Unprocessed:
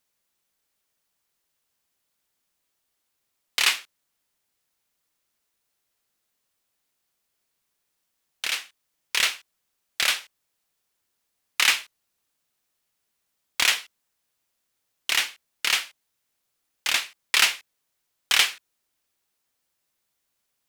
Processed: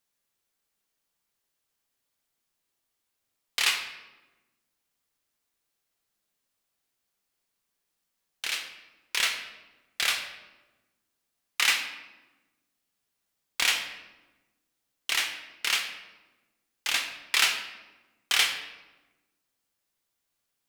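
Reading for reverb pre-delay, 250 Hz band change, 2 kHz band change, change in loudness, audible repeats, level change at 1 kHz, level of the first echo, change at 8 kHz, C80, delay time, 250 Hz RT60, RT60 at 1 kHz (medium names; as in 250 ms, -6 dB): 3 ms, -2.5 dB, -3.0 dB, -3.5 dB, no echo, -3.0 dB, no echo, -4.0 dB, 10.0 dB, no echo, 1.7 s, 1.1 s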